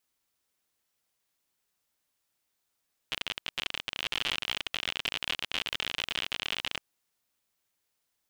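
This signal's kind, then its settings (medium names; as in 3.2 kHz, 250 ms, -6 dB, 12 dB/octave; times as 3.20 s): random clicks 60 per s -15 dBFS 3.69 s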